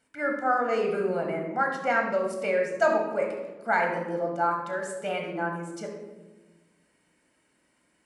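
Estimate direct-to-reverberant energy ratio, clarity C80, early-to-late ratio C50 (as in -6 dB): 1.0 dB, 6.5 dB, 4.5 dB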